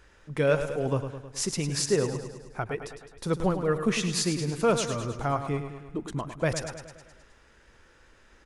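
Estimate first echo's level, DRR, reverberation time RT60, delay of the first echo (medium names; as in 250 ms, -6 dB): -9.5 dB, no reverb, no reverb, 105 ms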